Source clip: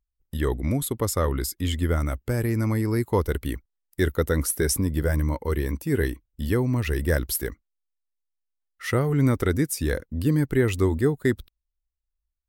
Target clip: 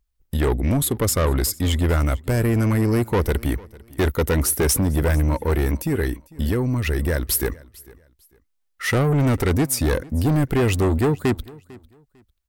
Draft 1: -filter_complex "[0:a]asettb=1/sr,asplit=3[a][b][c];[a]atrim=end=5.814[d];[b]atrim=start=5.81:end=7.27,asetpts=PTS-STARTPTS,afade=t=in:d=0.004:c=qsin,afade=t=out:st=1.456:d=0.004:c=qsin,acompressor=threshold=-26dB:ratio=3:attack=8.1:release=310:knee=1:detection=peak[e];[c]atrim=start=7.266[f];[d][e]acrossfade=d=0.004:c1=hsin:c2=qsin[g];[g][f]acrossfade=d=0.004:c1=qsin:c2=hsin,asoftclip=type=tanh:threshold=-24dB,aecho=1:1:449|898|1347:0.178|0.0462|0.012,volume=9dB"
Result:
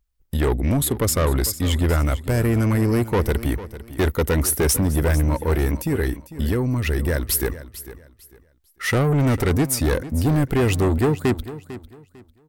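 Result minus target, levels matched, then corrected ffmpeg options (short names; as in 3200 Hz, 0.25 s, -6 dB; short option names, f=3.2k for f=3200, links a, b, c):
echo-to-direct +7.5 dB
-filter_complex "[0:a]asettb=1/sr,asplit=3[a][b][c];[a]atrim=end=5.814[d];[b]atrim=start=5.81:end=7.27,asetpts=PTS-STARTPTS,afade=t=in:d=0.004:c=qsin,afade=t=out:st=1.456:d=0.004:c=qsin,acompressor=threshold=-26dB:ratio=3:attack=8.1:release=310:knee=1:detection=peak[e];[c]atrim=start=7.266[f];[d][e]acrossfade=d=0.004:c1=hsin:c2=qsin[g];[g][f]acrossfade=d=0.004:c1=qsin:c2=hsin,asoftclip=type=tanh:threshold=-24dB,aecho=1:1:449|898:0.075|0.0195,volume=9dB"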